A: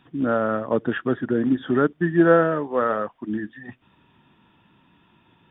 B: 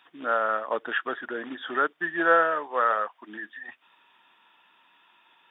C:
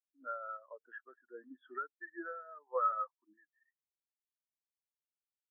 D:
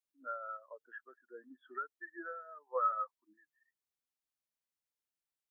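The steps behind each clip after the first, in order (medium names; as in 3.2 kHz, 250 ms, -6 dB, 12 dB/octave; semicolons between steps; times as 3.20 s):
high-pass 880 Hz 12 dB/octave; trim +3 dB
compression 12:1, threshold -25 dBFS, peak gain reduction 11 dB; random-step tremolo 1.5 Hz; spectral contrast expander 2.5:1; trim -6 dB
dynamic bell 300 Hz, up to -4 dB, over -56 dBFS, Q 1.8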